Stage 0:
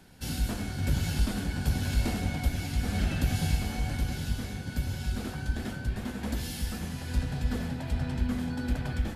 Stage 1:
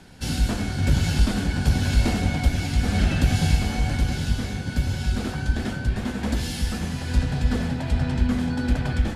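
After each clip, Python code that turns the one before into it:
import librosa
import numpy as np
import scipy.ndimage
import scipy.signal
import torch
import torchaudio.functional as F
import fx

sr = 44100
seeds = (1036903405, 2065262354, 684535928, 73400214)

y = scipy.signal.sosfilt(scipy.signal.butter(2, 9000.0, 'lowpass', fs=sr, output='sos'), x)
y = y * 10.0 ** (7.5 / 20.0)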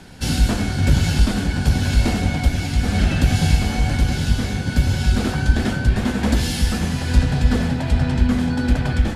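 y = fx.rider(x, sr, range_db=3, speed_s=2.0)
y = y * 10.0 ** (4.5 / 20.0)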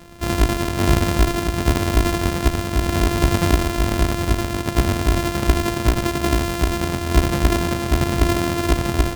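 y = np.r_[np.sort(x[:len(x) // 128 * 128].reshape(-1, 128), axis=1).ravel(), x[len(x) // 128 * 128:]]
y = y * 10.0 ** (-1.0 / 20.0)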